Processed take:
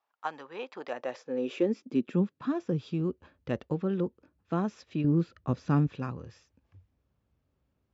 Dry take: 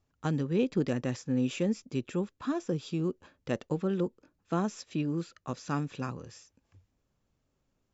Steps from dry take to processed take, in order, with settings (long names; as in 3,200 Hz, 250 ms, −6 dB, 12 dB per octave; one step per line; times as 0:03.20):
0:05.04–0:05.87: low-shelf EQ 500 Hz +8.5 dB
high-pass filter sweep 880 Hz → 62 Hz, 0:00.76–0:03.18
high-frequency loss of the air 170 metres